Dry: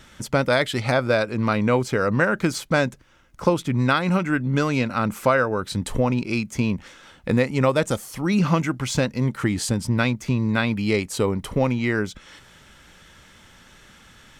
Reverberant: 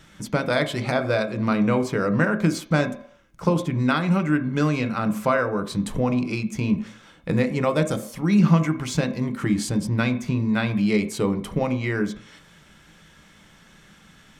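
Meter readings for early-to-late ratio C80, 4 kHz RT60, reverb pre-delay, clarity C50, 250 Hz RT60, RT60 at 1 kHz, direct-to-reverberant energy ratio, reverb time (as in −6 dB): 15.5 dB, 0.55 s, 3 ms, 13.0 dB, 0.40 s, 0.60 s, 6.5 dB, 0.65 s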